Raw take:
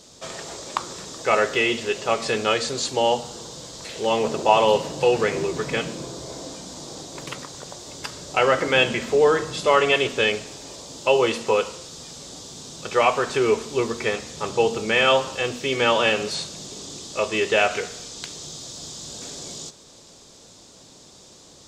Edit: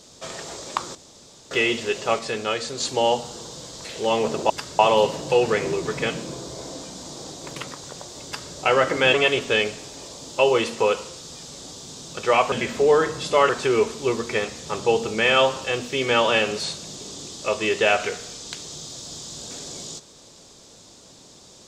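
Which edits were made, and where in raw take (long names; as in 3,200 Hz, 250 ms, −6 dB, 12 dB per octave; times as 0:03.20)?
0:00.95–0:01.51: fill with room tone
0:02.19–0:02.80: clip gain −4 dB
0:07.96–0:08.25: duplicate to 0:04.50
0:08.85–0:09.82: move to 0:13.20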